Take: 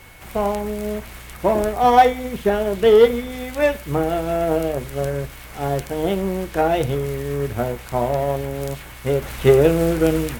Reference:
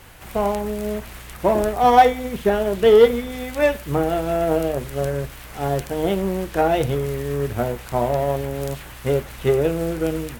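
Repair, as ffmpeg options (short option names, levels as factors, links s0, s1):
-af "bandreject=f=2200:w=30,asetnsamples=n=441:p=0,asendcmd='9.22 volume volume -5.5dB',volume=1"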